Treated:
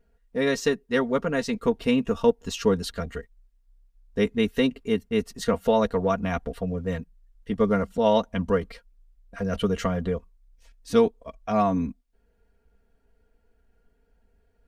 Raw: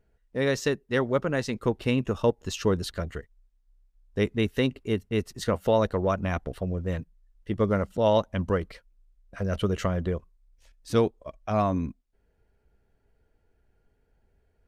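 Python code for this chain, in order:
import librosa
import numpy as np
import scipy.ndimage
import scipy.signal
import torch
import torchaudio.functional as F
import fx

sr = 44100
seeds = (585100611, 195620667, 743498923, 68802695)

y = x + 0.73 * np.pad(x, (int(4.3 * sr / 1000.0), 0))[:len(x)]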